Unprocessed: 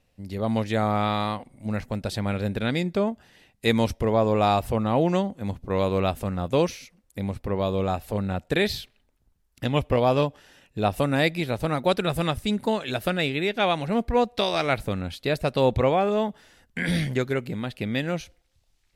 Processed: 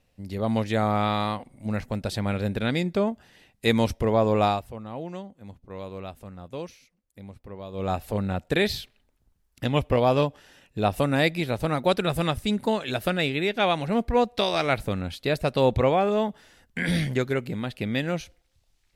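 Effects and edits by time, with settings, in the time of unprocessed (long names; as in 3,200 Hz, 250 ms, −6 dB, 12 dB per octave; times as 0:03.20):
0:04.44–0:07.92: duck −13.5 dB, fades 0.20 s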